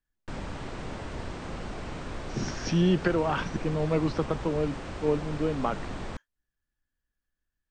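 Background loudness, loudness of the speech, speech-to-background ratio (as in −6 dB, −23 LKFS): −38.5 LKFS, −29.0 LKFS, 9.5 dB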